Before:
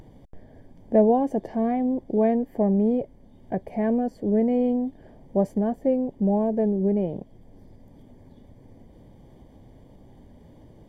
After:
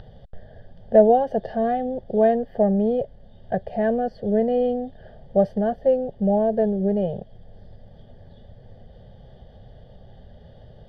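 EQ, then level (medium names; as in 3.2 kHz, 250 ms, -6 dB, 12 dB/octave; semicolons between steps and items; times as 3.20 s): distance through air 180 m; treble shelf 2.2 kHz +9.5 dB; static phaser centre 1.5 kHz, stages 8; +6.5 dB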